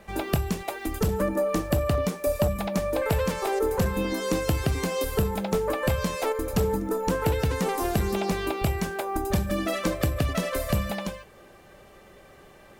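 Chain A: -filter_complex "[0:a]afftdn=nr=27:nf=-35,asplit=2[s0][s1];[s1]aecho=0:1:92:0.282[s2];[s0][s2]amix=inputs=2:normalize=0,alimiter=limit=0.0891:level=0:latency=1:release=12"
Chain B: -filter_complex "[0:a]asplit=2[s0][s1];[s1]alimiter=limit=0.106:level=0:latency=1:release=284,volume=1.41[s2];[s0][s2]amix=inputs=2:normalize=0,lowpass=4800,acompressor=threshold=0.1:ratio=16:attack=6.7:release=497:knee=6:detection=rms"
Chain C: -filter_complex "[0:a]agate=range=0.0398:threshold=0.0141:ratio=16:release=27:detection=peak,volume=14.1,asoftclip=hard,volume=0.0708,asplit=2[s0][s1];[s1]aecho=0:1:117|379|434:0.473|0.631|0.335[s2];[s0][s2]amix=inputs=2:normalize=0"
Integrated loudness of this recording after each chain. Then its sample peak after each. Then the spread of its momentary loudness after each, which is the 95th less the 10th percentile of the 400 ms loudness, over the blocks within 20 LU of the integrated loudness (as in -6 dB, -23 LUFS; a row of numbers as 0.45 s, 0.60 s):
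-29.5 LUFS, -27.5 LUFS, -26.5 LUFS; -21.0 dBFS, -13.5 dBFS, -15.5 dBFS; 2 LU, 11 LU, 4 LU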